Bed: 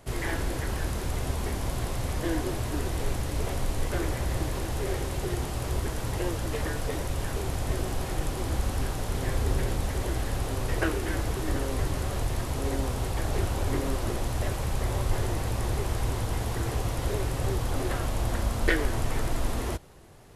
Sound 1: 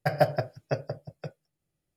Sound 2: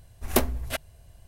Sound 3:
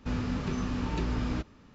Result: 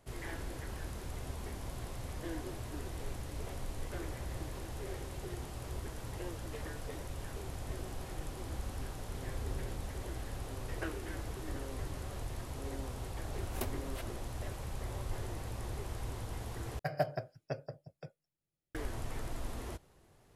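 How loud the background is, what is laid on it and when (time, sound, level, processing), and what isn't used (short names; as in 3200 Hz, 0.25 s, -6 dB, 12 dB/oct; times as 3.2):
bed -12 dB
13.25 add 2 -17.5 dB + backwards sustainer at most 100 dB/s
16.79 replace with 1 -10 dB
not used: 3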